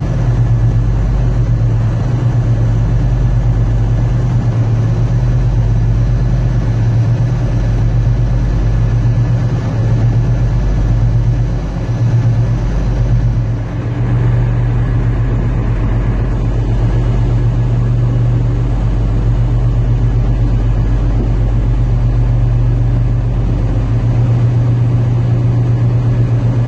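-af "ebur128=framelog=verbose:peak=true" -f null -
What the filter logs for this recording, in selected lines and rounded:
Integrated loudness:
  I:         -13.9 LUFS
  Threshold: -23.9 LUFS
Loudness range:
  LRA:         1.3 LU
  Threshold: -34.0 LUFS
  LRA low:   -14.8 LUFS
  LRA high:  -13.4 LUFS
True peak:
  Peak:       -2.6 dBFS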